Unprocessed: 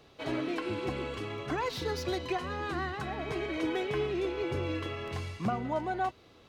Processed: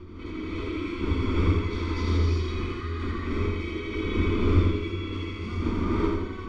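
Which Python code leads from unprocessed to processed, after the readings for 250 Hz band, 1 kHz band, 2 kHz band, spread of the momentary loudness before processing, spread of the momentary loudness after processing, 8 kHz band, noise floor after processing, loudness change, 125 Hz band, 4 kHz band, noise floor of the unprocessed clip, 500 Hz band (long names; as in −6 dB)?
+7.0 dB, −2.0 dB, +1.5 dB, 5 LU, 9 LU, can't be measured, −37 dBFS, +6.0 dB, +13.0 dB, +2.0 dB, −59 dBFS, +1.5 dB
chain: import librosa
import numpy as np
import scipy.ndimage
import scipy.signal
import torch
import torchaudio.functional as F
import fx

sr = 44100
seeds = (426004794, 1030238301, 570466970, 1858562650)

p1 = fx.dmg_wind(x, sr, seeds[0], corner_hz=510.0, level_db=-30.0)
p2 = scipy.signal.sosfilt(scipy.signal.butter(2, 4900.0, 'lowpass', fs=sr, output='sos'), p1)
p3 = fx.peak_eq(p2, sr, hz=84.0, db=11.5, octaves=0.48)
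p4 = fx.fixed_phaser(p3, sr, hz=320.0, stages=4)
p5 = p4 + 0.76 * np.pad(p4, (int(0.9 * sr / 1000.0), 0))[:len(p4)]
p6 = p5 + fx.echo_feedback(p5, sr, ms=83, feedback_pct=48, wet_db=-4.5, dry=0)
p7 = fx.rev_gated(p6, sr, seeds[1], gate_ms=400, shape='rising', drr_db=-6.5)
y = p7 * librosa.db_to_amplitude(-7.5)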